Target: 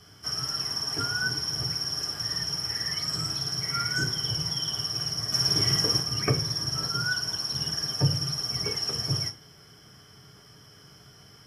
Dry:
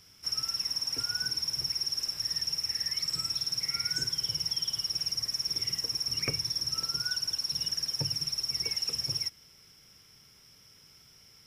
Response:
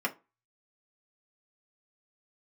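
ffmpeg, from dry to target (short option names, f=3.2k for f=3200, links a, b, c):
-filter_complex "[0:a]asettb=1/sr,asplit=3[a][b][c];[a]atrim=end=5.324[d];[b]atrim=start=5.32:end=6,asetpts=PTS-STARTPTS,afade=t=in:d=0.004:c=qsin,afade=t=out:st=0.676:d=0.004:c=qsin,acontrast=54[e];[c]atrim=start=5.996[f];[d][e]acrossfade=d=0.004:c1=hsin:c2=qsin[g];[g][f]acrossfade=d=0.004:c1=qsin:c2=hsin[h];[1:a]atrim=start_sample=2205,asetrate=26019,aresample=44100[i];[h][i]afir=irnorm=-1:irlink=0"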